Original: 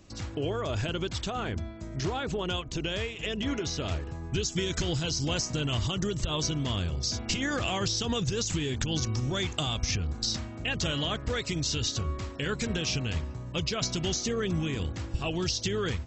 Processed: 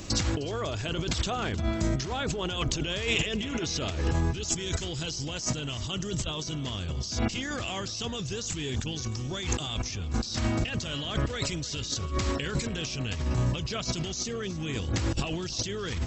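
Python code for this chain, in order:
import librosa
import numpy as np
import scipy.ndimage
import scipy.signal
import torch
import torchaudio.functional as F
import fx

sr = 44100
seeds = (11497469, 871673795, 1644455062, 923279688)

y = fx.high_shelf(x, sr, hz=3400.0, db=6.0)
y = fx.over_compress(y, sr, threshold_db=-38.0, ratio=-1.0)
y = fx.echo_feedback(y, sr, ms=308, feedback_pct=56, wet_db=-18.0)
y = y * 10.0 ** (6.5 / 20.0)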